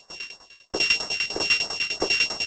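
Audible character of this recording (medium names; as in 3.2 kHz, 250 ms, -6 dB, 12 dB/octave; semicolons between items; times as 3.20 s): a buzz of ramps at a fixed pitch in blocks of 16 samples; tremolo saw down 10 Hz, depth 90%; phasing stages 2, 3.1 Hz, lowest notch 680–2600 Hz; G.722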